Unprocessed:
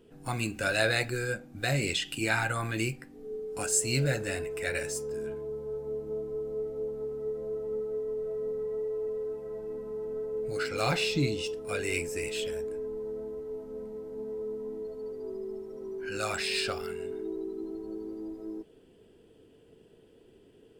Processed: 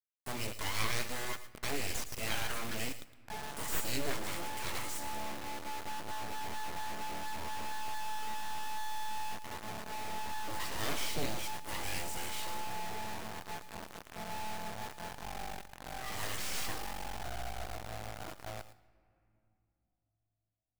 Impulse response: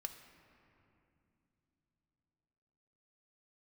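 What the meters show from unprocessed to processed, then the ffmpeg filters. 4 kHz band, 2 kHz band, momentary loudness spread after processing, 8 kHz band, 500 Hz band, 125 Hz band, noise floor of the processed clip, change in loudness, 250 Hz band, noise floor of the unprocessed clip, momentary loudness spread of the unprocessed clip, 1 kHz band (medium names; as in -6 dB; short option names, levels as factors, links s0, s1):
-4.5 dB, -7.5 dB, 9 LU, -5.0 dB, -14.5 dB, -10.5 dB, -84 dBFS, -7.0 dB, -9.5 dB, -59 dBFS, 12 LU, +2.0 dB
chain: -filter_complex "[0:a]aeval=exprs='abs(val(0))':c=same,acrusher=bits=3:dc=4:mix=0:aa=0.000001,asplit=2[s0][s1];[1:a]atrim=start_sample=2205,highshelf=f=5400:g=6,adelay=112[s2];[s1][s2]afir=irnorm=-1:irlink=0,volume=0.282[s3];[s0][s3]amix=inputs=2:normalize=0,volume=0.501"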